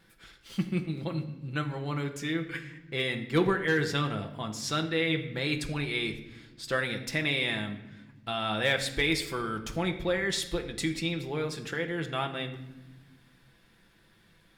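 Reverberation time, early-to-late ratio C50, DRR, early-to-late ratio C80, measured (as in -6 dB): 1.1 s, 11.0 dB, 3.0 dB, 13.0 dB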